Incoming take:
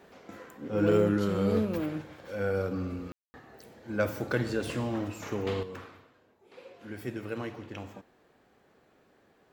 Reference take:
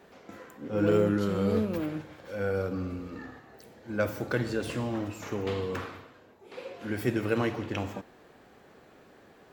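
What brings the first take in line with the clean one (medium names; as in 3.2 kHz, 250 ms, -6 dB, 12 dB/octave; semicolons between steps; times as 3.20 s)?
room tone fill 3.12–3.34 s; trim 0 dB, from 5.63 s +8.5 dB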